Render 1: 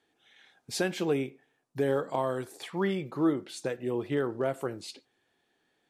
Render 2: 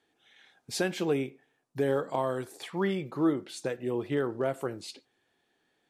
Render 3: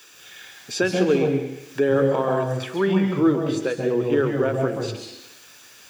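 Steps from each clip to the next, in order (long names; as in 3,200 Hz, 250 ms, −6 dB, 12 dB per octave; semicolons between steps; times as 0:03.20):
no processing that can be heard
background noise white −60 dBFS; convolution reverb RT60 0.75 s, pre-delay 132 ms, DRR 4 dB; one half of a high-frequency compander encoder only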